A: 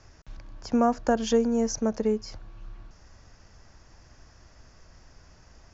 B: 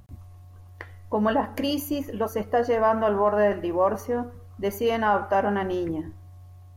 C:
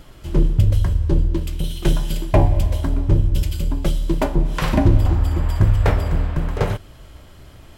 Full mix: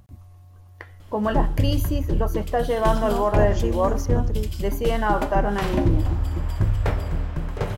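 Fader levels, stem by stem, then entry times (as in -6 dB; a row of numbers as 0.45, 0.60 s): -7.0, -0.5, -6.0 dB; 2.30, 0.00, 1.00 s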